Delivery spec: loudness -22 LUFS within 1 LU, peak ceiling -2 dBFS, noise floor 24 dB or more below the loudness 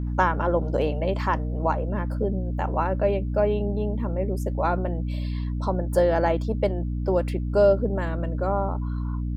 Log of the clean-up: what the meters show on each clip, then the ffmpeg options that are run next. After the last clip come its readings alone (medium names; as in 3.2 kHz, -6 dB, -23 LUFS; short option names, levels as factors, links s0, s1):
hum 60 Hz; highest harmonic 300 Hz; hum level -25 dBFS; loudness -25.0 LUFS; peak level -6.5 dBFS; loudness target -22.0 LUFS
-> -af "bandreject=f=60:t=h:w=4,bandreject=f=120:t=h:w=4,bandreject=f=180:t=h:w=4,bandreject=f=240:t=h:w=4,bandreject=f=300:t=h:w=4"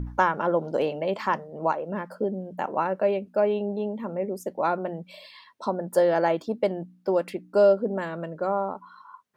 hum not found; loudness -26.5 LUFS; peak level -7.5 dBFS; loudness target -22.0 LUFS
-> -af "volume=1.68"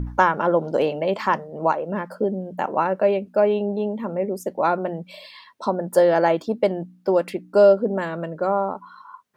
loudness -22.0 LUFS; peak level -3.0 dBFS; noise floor -52 dBFS